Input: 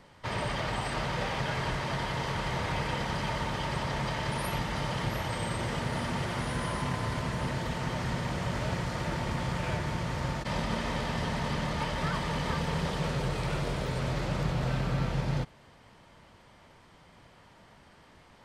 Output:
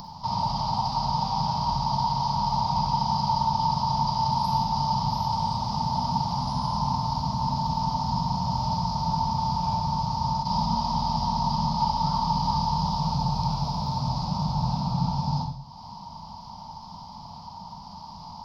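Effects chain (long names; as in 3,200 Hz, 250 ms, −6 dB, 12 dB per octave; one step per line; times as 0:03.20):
drawn EQ curve 110 Hz 0 dB, 200 Hz +7 dB, 380 Hz −20 dB, 560 Hz −12 dB, 910 Hz +14 dB, 1,700 Hz −28 dB, 3,100 Hz −10 dB, 5,100 Hz +14 dB, 8,200 Hz −23 dB, 14,000 Hz −3 dB
upward compression, threshold −32 dBFS
on a send: convolution reverb RT60 0.50 s, pre-delay 40 ms, DRR 4 dB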